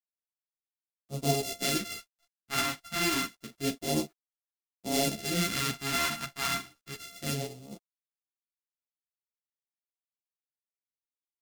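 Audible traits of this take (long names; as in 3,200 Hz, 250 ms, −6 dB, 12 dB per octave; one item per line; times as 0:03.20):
a buzz of ramps at a fixed pitch in blocks of 64 samples
phaser sweep stages 2, 0.28 Hz, lowest notch 450–1,700 Hz
a quantiser's noise floor 12 bits, dither none
a shimmering, thickened sound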